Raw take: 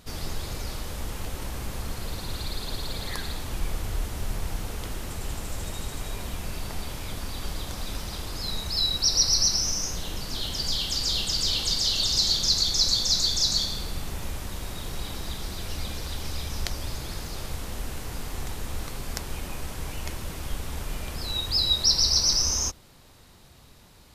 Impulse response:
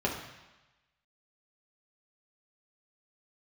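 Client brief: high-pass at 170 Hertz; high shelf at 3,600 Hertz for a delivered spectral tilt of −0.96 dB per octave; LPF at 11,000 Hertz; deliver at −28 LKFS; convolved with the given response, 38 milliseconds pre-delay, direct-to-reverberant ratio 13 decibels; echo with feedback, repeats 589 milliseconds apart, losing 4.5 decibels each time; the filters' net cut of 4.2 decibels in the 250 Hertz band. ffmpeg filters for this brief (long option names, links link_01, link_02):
-filter_complex "[0:a]highpass=170,lowpass=11000,equalizer=frequency=250:width_type=o:gain=-4,highshelf=frequency=3600:gain=8.5,aecho=1:1:589|1178|1767|2356|2945|3534|4123|4712|5301:0.596|0.357|0.214|0.129|0.0772|0.0463|0.0278|0.0167|0.01,asplit=2[link_01][link_02];[1:a]atrim=start_sample=2205,adelay=38[link_03];[link_02][link_03]afir=irnorm=-1:irlink=0,volume=-22dB[link_04];[link_01][link_04]amix=inputs=2:normalize=0,volume=-10dB"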